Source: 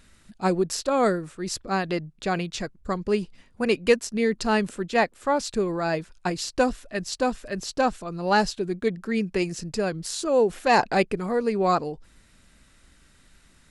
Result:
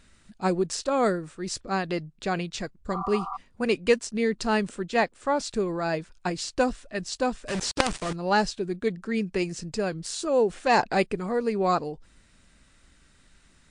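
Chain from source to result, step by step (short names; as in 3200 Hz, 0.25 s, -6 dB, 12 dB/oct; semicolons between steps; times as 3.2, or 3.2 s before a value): 2.94–3.34 spectral repair 690–1400 Hz before; 7.48–8.13 companded quantiser 2-bit; gain -1.5 dB; MP3 64 kbps 22050 Hz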